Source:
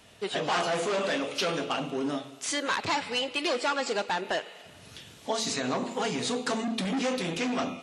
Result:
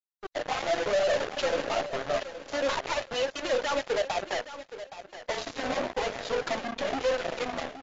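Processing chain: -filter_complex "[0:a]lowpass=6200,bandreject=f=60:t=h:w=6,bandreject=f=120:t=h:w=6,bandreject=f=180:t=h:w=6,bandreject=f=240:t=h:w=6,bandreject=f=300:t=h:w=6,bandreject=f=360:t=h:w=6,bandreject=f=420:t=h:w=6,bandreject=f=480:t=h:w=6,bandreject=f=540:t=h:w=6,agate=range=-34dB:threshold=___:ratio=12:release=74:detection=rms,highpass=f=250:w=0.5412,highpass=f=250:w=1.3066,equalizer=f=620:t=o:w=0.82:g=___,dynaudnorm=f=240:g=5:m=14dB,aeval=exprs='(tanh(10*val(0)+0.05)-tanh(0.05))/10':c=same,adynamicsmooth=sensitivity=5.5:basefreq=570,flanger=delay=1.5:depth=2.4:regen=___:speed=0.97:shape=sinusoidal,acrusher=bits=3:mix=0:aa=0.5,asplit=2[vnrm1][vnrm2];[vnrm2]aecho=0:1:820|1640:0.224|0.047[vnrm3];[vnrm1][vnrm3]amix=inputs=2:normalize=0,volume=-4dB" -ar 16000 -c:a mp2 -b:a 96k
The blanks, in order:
-38dB, 12.5, 15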